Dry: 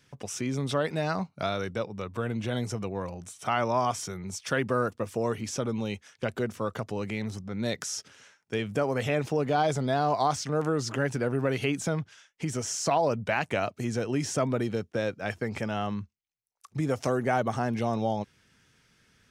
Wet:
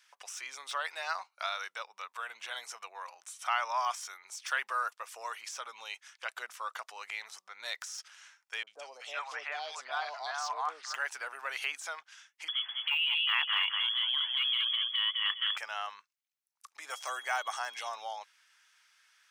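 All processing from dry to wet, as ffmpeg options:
-filter_complex "[0:a]asettb=1/sr,asplit=3[s0][s1][s2];[s0]atrim=end=8.634[s3];[s1]atrim=start=8.63:end=10.94,asetpts=PTS-STARTPTS,afade=t=in:d=0.004:c=qsin,afade=t=out:st=2.306:d=0.004:c=qsin,highpass=110,lowpass=5500,acrossover=split=720|2600[s4][s5][s6];[s6]adelay=40[s7];[s5]adelay=380[s8];[s4][s8][s7]amix=inputs=3:normalize=0,atrim=end_sample=101871[s9];[s2]atrim=start=10.936[s10];[s3][s9]acrossfade=d=0.004:c1=hsin:c2=qsin[s11];[s11][s10]acrossfade=d=0.004:c1=qsin:c2=hsin,asettb=1/sr,asplit=3[s12][s13][s14];[s12]atrim=end=12.484[s15];[s13]atrim=start=12.48:end=15.57,asetpts=PTS-STARTPTS,afade=t=in:d=0.004:c=qsin,afade=t=out:st=3.086:d=0.004:c=qsin,lowpass=f=3000:t=q:w=0.5098,lowpass=f=3000:t=q:w=0.6013,lowpass=f=3000:t=q:w=0.9,lowpass=f=3000:t=q:w=2.563,afreqshift=-3500,aecho=1:1:203|406|609|812:0.531|0.149|0.0416|0.0117,atrim=end_sample=136269[s16];[s14]atrim=start=15.566[s17];[s15][s16]acrossfade=d=0.004:c1=hsin:c2=qsin[s18];[s18][s17]acrossfade=d=0.004:c1=qsin:c2=hsin,asettb=1/sr,asplit=3[s19][s20][s21];[s19]atrim=end=16.904[s22];[s20]atrim=start=16.9:end=17.89,asetpts=PTS-STARTPTS,afade=t=in:d=0.004:c=qsin,afade=t=out:st=0.986:d=0.004:c=qsin,equalizer=f=7800:w=0.71:g=6,aeval=exprs='val(0)+0.00398*sin(2*PI*3300*n/s)':c=same,highpass=130[s23];[s21]atrim=start=17.886[s24];[s22][s23]acrossfade=d=0.004:c1=hsin:c2=qsin[s25];[s25][s24]acrossfade=d=0.004:c1=qsin:c2=hsin,deesser=0.85,highpass=f=940:w=0.5412,highpass=f=940:w=1.3066"

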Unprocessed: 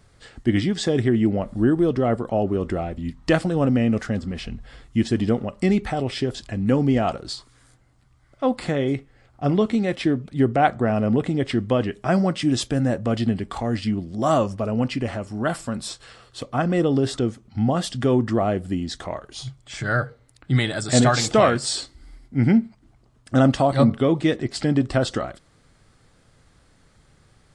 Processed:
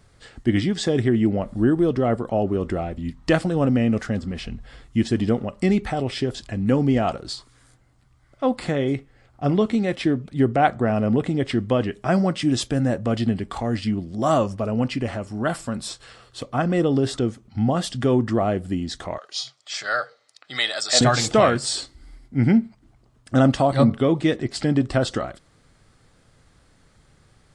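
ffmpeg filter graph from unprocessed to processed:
-filter_complex "[0:a]asettb=1/sr,asplit=3[s0][s1][s2];[s0]atrim=end=19.184[s3];[s1]atrim=start=19.18:end=21.01,asetpts=PTS-STARTPTS,afade=t=in:d=0.004:c=qsin,afade=t=out:st=1.826:d=0.004:c=qsin,highpass=620,lowpass=7700,equalizer=f=4900:t=o:w=1.1:g=10.5,aecho=1:1:1.6:0.31,atrim=end_sample=80703[s4];[s2]atrim=start=21.006[s5];[s3][s4]acrossfade=d=0.004:c1=hsin:c2=qsin[s6];[s6][s5]acrossfade=d=0.004:c1=qsin:c2=hsin"

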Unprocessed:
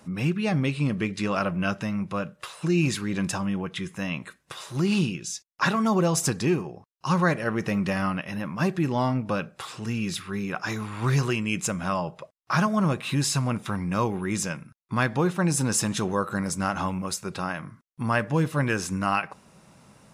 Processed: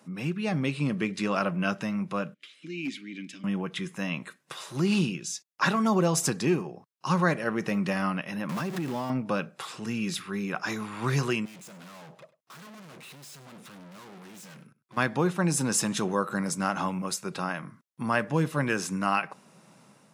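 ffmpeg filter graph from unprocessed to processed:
-filter_complex "[0:a]asettb=1/sr,asplit=3[s0][s1][s2];[s0]atrim=end=2.344[s3];[s1]atrim=start=2.34:end=3.44,asetpts=PTS-STARTPTS,afade=t=in:d=0.004:c=qsin,afade=t=out:st=1.096:d=0.004:c=qsin,asplit=3[s4][s5][s6];[s4]bandpass=f=270:t=q:w=8,volume=1[s7];[s5]bandpass=f=2290:t=q:w=8,volume=0.501[s8];[s6]bandpass=f=3010:t=q:w=8,volume=0.355[s9];[s7][s8][s9]amix=inputs=3:normalize=0,highshelf=f=2300:g=11.5,volume=17.8,asoftclip=hard,volume=0.0562[s10];[s2]atrim=start=3.436[s11];[s3][s10]acrossfade=d=0.004:c1=hsin:c2=qsin[s12];[s12][s11]acrossfade=d=0.004:c1=qsin:c2=hsin,asettb=1/sr,asplit=3[s13][s14][s15];[s13]atrim=end=8.494[s16];[s14]atrim=start=8.49:end=9.1,asetpts=PTS-STARTPTS,afade=t=in:d=0.004:c=qsin,afade=t=out:st=0.606:d=0.004:c=qsin,aeval=exprs='val(0)+0.5*0.0355*sgn(val(0))':c=same,acompressor=threshold=0.0501:ratio=6:attack=3.2:release=140:knee=1:detection=peak[s17];[s15]atrim=start=9.096[s18];[s16][s17]acrossfade=d=0.004:c1=hsin:c2=qsin[s19];[s19][s18]acrossfade=d=0.004:c1=qsin:c2=hsin,asettb=1/sr,asplit=3[s20][s21][s22];[s20]atrim=end=11.454[s23];[s21]atrim=start=11.45:end=14.97,asetpts=PTS-STARTPTS,afade=t=in:d=0.004:c=qsin,afade=t=out:st=3.516:d=0.004:c=qsin,aeval=exprs='(tanh(100*val(0)+0.6)-tanh(0.6))/100':c=same,aeval=exprs='0.0106*(abs(mod(val(0)/0.0106+3,4)-2)-1)':c=same,aecho=1:1:99:0.119,atrim=end_sample=155232[s24];[s22]atrim=start=14.966[s25];[s23][s24]acrossfade=d=0.004:c1=hsin:c2=qsin[s26];[s26][s25]acrossfade=d=0.004:c1=qsin:c2=hsin,highpass=f=140:w=0.5412,highpass=f=140:w=1.3066,dynaudnorm=f=360:g=3:m=1.58,volume=0.562"

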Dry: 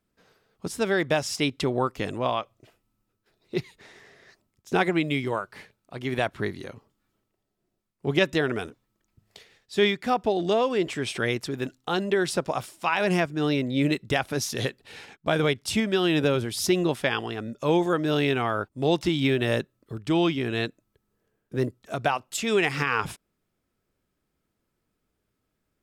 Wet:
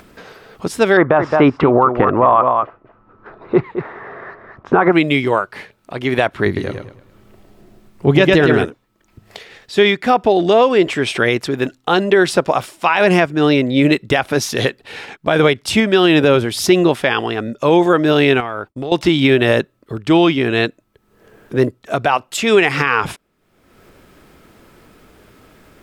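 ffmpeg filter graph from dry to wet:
-filter_complex "[0:a]asettb=1/sr,asplit=3[s0][s1][s2];[s0]atrim=end=0.974[s3];[s1]atrim=start=0.97:end=4.92,asetpts=PTS-STARTPTS,afade=t=in:d=0.004:c=qsin,afade=t=out:st=3.946:d=0.004:c=qsin,acontrast=32,lowpass=f=1200:t=q:w=2.6,aecho=1:1:216:0.266,atrim=end_sample=174195[s4];[s2]atrim=start=4.916[s5];[s3][s4]acrossfade=d=0.004:c1=hsin:c2=qsin[s6];[s6][s5]acrossfade=d=0.004:c1=qsin:c2=hsin,asettb=1/sr,asplit=3[s7][s8][s9];[s7]atrim=end=6.464[s10];[s8]atrim=start=6.46:end=8.65,asetpts=PTS-STARTPTS,afade=t=in:d=0.004:c=qsin,afade=t=out:st=2.186:d=0.004:c=qsin,lowshelf=f=210:g=10,aecho=1:1:106|212|318|424:0.501|0.14|0.0393|0.011,atrim=end_sample=96579[s11];[s9]atrim=start=8.646[s12];[s10][s11]acrossfade=d=0.004:c1=hsin:c2=qsin[s13];[s13][s12]acrossfade=d=0.004:c1=qsin:c2=hsin,asettb=1/sr,asplit=3[s14][s15][s16];[s14]atrim=end=18.404[s17];[s15]atrim=start=18.4:end=18.92,asetpts=PTS-STARTPTS,afade=t=in:d=0.004:c=qsin,afade=t=out:st=0.516:d=0.004:c=qsin,agate=range=0.0224:threshold=0.00355:ratio=3:release=100:detection=peak,acompressor=threshold=0.0282:ratio=12:attack=3.2:release=140:knee=1:detection=peak[s18];[s16]atrim=start=18.916[s19];[s17][s18]acrossfade=d=0.004:c1=hsin:c2=qsin[s20];[s20][s19]acrossfade=d=0.004:c1=qsin:c2=hsin,acompressor=mode=upward:threshold=0.0112:ratio=2.5,bass=f=250:g=-5,treble=f=4000:g=-7,alimiter=level_in=5.01:limit=0.891:release=50:level=0:latency=1,volume=0.891"

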